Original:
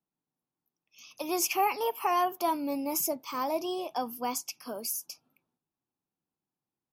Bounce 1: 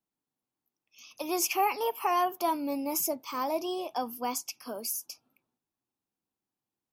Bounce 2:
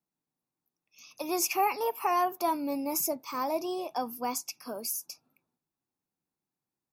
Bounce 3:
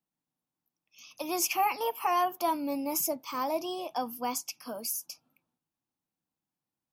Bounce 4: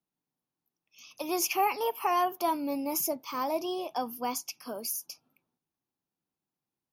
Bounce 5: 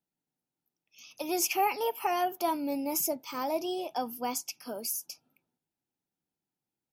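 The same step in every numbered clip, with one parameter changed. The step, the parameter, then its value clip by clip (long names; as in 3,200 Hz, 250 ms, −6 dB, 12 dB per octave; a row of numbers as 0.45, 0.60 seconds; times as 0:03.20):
notch filter, centre frequency: 160, 3,100, 400, 7,800, 1,100 Hertz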